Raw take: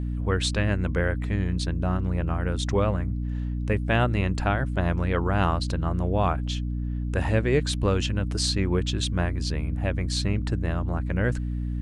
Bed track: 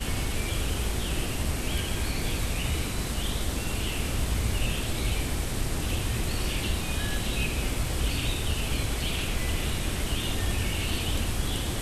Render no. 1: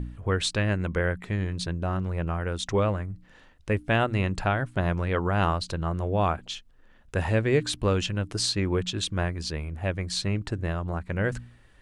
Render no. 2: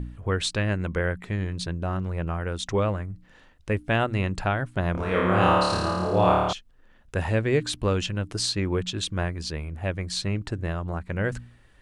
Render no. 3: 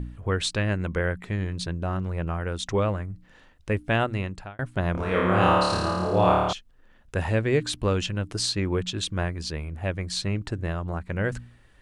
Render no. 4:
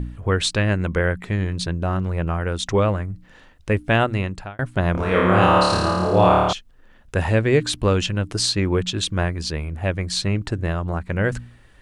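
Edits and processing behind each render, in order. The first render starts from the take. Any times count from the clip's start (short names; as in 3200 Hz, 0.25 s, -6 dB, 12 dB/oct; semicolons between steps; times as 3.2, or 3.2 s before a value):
de-hum 60 Hz, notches 5
4.92–6.53 flutter echo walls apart 4.7 m, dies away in 1.3 s
4.02–4.59 fade out
gain +5.5 dB; limiter -3 dBFS, peak gain reduction 2.5 dB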